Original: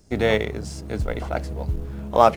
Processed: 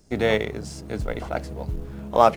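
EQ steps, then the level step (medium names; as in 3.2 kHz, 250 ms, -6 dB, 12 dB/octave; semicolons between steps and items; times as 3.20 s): peaking EQ 79 Hz -7.5 dB 0.49 oct; -1.0 dB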